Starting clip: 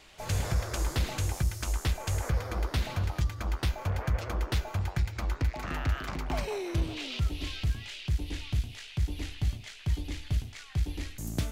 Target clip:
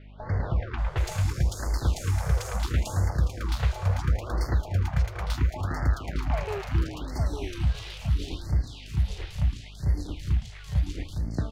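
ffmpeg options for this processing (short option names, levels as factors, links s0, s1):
-filter_complex "[0:a]highshelf=f=8300:g=-7.5,asplit=2[s0][s1];[s1]acrusher=bits=4:mix=0:aa=0.5,volume=0.355[s2];[s0][s2]amix=inputs=2:normalize=0,acrossover=split=3000[s3][s4];[s4]adelay=780[s5];[s3][s5]amix=inputs=2:normalize=0,aeval=exprs='val(0)+0.00501*(sin(2*PI*50*n/s)+sin(2*PI*2*50*n/s)/2+sin(2*PI*3*50*n/s)/3+sin(2*PI*4*50*n/s)/4+sin(2*PI*5*50*n/s)/5)':c=same,asplit=2[s6][s7];[s7]adelay=858,lowpass=f=2900:p=1,volume=0.501,asplit=2[s8][s9];[s9]adelay=858,lowpass=f=2900:p=1,volume=0.33,asplit=2[s10][s11];[s11]adelay=858,lowpass=f=2900:p=1,volume=0.33,asplit=2[s12][s13];[s13]adelay=858,lowpass=f=2900:p=1,volume=0.33[s14];[s8][s10][s12][s14]amix=inputs=4:normalize=0[s15];[s6][s15]amix=inputs=2:normalize=0,afftfilt=real='re*(1-between(b*sr/1024,230*pow(3100/230,0.5+0.5*sin(2*PI*0.73*pts/sr))/1.41,230*pow(3100/230,0.5+0.5*sin(2*PI*0.73*pts/sr))*1.41))':imag='im*(1-between(b*sr/1024,230*pow(3100/230,0.5+0.5*sin(2*PI*0.73*pts/sr))/1.41,230*pow(3100/230,0.5+0.5*sin(2*PI*0.73*pts/sr))*1.41))':win_size=1024:overlap=0.75"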